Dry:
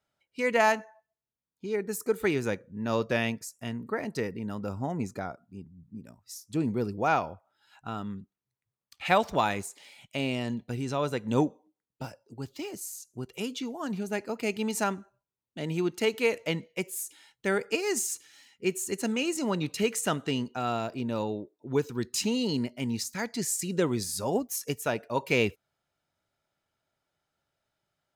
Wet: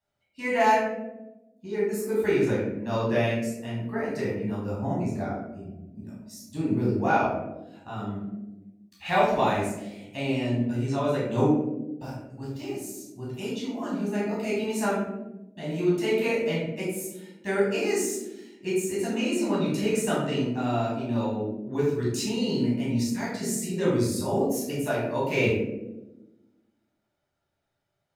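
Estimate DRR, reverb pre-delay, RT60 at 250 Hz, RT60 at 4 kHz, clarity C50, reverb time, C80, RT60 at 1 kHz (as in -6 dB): -8.0 dB, 11 ms, 1.6 s, 0.45 s, 0.5 dB, 1.1 s, 4.0 dB, 0.85 s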